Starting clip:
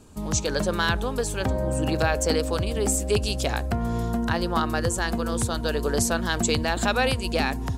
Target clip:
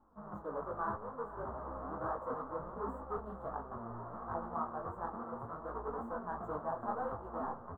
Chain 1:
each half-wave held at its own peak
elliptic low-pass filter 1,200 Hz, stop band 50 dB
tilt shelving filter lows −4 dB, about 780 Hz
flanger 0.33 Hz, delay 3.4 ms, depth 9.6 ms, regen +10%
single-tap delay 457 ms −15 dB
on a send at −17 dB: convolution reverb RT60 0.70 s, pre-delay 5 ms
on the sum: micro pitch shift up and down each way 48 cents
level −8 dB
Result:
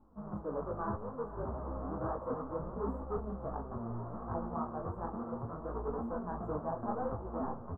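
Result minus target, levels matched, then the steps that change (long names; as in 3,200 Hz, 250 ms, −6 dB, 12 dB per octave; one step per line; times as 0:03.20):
1,000 Hz band −3.5 dB
change: tilt shelving filter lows −12.5 dB, about 780 Hz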